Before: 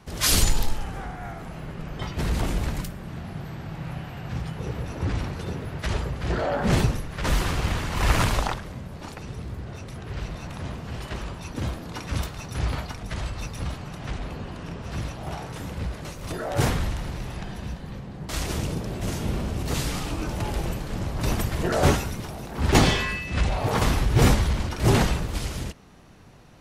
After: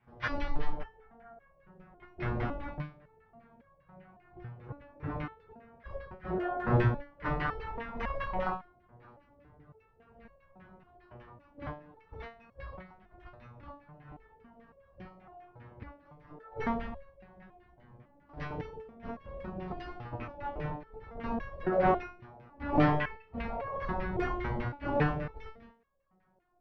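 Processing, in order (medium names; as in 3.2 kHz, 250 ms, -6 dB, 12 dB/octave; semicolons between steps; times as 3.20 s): steep low-pass 6 kHz 96 dB/octave; reverse echo 30 ms -17 dB; gate -27 dBFS, range -14 dB; in parallel at -6 dB: saturation -22 dBFS, distortion -9 dB; on the sum: LFO low-pass saw down 5 Hz 530–2200 Hz; resonator arpeggio 3.6 Hz 120–550 Hz; trim +2 dB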